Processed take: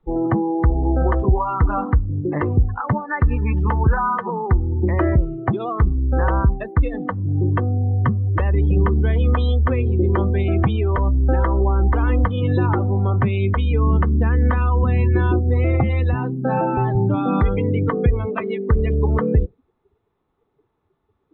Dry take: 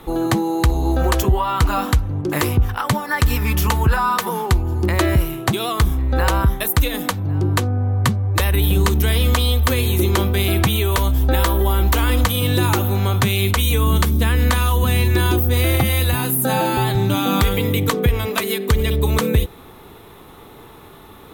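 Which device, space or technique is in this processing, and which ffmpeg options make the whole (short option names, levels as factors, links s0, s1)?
phone in a pocket: -af "lowpass=3600,highshelf=f=2500:g=-10.5,afftdn=nr=29:nf=-25"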